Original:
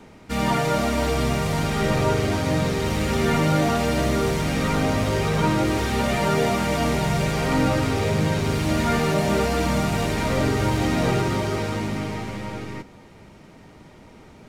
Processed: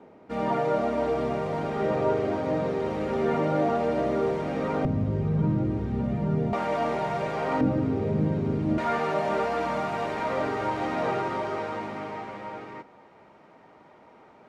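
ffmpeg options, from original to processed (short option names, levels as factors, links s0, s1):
-af "asetnsamples=n=441:p=0,asendcmd='4.85 bandpass f 150;6.53 bandpass f 750;7.61 bandpass f 250;8.78 bandpass f 870',bandpass=f=530:t=q:w=0.98:csg=0"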